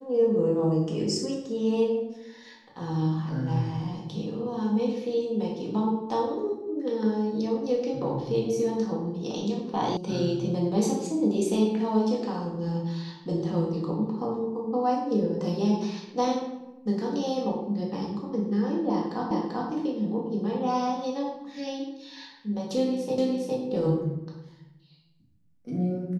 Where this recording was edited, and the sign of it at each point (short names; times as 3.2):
9.97 sound cut off
19.31 repeat of the last 0.39 s
23.18 repeat of the last 0.41 s